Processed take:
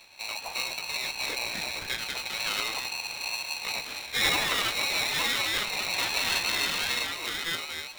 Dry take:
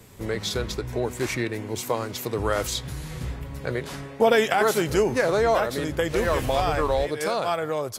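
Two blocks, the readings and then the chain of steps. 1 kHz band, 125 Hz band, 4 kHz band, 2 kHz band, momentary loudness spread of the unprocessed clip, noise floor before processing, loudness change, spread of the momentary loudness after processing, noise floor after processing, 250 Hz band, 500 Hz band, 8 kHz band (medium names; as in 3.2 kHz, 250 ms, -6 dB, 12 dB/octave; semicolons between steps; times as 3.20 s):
-8.5 dB, -17.5 dB, +6.5 dB, +1.5 dB, 11 LU, -38 dBFS, -3.0 dB, 7 LU, -41 dBFS, -15.0 dB, -18.5 dB, +1.5 dB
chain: dynamic bell 490 Hz, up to -7 dB, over -35 dBFS, Q 0.94; reverse; upward compressor, threshold -36 dBFS; reverse; wow and flutter 59 cents; ever faster or slower copies 396 ms, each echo +2 st, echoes 2; flange 0.4 Hz, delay 5.8 ms, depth 8.6 ms, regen +74%; frequency inversion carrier 3.5 kHz; on a send: feedback echo behind a high-pass 275 ms, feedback 78%, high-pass 1.7 kHz, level -22 dB; on the sum: polarity switched at an audio rate 830 Hz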